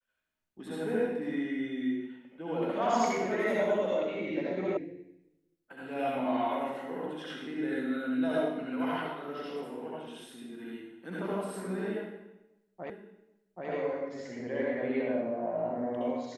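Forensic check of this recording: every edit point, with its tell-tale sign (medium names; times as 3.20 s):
4.77 s: sound stops dead
12.90 s: repeat of the last 0.78 s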